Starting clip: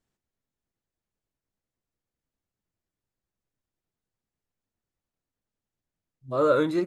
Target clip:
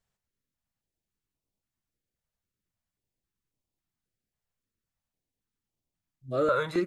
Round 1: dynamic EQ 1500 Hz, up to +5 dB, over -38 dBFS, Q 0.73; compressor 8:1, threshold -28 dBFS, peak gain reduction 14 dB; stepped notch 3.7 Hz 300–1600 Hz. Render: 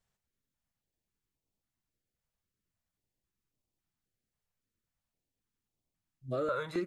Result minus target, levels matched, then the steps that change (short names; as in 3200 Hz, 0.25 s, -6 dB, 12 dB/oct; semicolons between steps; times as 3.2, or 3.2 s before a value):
compressor: peak gain reduction +8 dB
change: compressor 8:1, threshold -19 dBFS, peak gain reduction 6 dB